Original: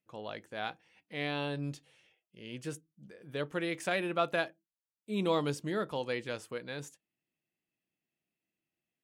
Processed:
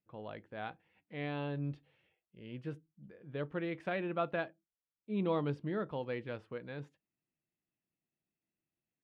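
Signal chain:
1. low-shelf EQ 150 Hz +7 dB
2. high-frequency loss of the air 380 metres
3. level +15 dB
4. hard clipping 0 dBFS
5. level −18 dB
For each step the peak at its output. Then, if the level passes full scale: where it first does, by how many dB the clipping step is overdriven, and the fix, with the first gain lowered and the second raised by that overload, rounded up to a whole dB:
−16.5, −19.5, −4.5, −4.5, −22.5 dBFS
no step passes full scale

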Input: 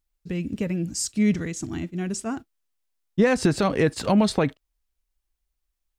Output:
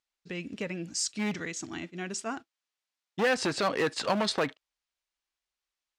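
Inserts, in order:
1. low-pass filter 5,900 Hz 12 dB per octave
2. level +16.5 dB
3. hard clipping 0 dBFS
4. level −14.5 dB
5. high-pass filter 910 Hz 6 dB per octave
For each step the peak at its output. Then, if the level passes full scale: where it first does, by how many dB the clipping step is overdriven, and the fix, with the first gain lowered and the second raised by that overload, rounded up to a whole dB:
−9.5, +7.0, 0.0, −14.5, −13.5 dBFS
step 2, 7.0 dB
step 2 +9.5 dB, step 4 −7.5 dB

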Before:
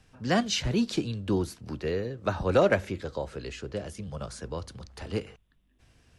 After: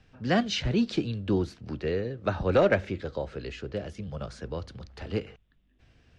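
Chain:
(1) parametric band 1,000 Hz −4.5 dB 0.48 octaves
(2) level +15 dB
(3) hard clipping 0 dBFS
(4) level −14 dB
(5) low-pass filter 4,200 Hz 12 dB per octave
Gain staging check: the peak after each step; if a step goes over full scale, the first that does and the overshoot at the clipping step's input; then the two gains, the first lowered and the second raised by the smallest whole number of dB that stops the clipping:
−12.0, +3.0, 0.0, −14.0, −13.5 dBFS
step 2, 3.0 dB
step 2 +12 dB, step 4 −11 dB

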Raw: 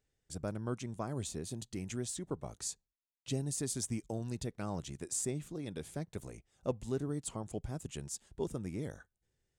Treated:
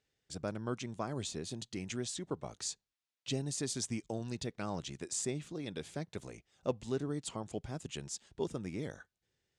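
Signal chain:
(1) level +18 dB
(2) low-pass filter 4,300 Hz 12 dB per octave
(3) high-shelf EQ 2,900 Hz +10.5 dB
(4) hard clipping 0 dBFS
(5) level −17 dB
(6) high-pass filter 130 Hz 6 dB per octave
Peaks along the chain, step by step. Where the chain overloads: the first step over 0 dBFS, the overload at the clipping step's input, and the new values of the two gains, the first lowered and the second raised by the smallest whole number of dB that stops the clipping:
−2.0, −2.0, −2.0, −2.0, −19.0, −19.5 dBFS
no step passes full scale

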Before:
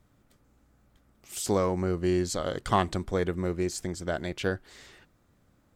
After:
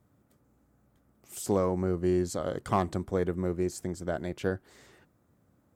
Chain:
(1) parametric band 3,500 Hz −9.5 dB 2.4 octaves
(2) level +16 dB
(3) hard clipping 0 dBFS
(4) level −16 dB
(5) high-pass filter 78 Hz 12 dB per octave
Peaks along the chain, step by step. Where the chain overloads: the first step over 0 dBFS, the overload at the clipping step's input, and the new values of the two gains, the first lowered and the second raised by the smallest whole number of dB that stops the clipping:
−11.5, +4.5, 0.0, −16.0, −13.0 dBFS
step 2, 4.5 dB
step 2 +11 dB, step 4 −11 dB

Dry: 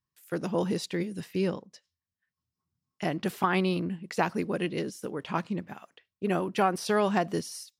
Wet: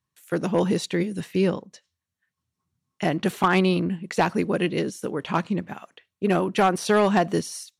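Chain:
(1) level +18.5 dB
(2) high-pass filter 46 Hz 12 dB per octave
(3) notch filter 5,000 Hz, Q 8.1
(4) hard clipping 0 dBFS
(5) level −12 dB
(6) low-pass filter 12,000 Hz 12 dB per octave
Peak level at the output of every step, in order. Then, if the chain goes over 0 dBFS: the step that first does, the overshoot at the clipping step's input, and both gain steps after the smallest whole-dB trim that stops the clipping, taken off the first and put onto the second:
+6.5, +7.0, +7.0, 0.0, −12.0, −11.5 dBFS
step 1, 7.0 dB
step 1 +11.5 dB, step 5 −5 dB

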